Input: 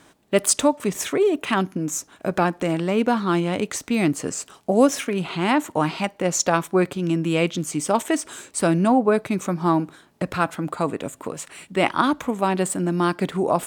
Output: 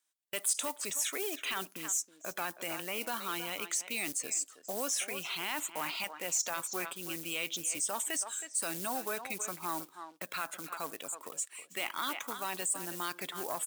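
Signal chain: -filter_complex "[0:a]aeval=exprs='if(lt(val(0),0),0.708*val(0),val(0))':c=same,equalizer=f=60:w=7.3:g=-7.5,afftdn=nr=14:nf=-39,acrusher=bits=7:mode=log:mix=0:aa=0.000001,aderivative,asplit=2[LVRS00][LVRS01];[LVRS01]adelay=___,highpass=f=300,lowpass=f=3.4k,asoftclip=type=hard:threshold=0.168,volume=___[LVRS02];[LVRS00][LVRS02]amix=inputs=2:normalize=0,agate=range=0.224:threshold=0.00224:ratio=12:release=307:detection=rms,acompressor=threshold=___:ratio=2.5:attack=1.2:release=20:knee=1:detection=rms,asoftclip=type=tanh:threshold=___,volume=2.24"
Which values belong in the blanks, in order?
320, 0.224, 0.0141, 0.0335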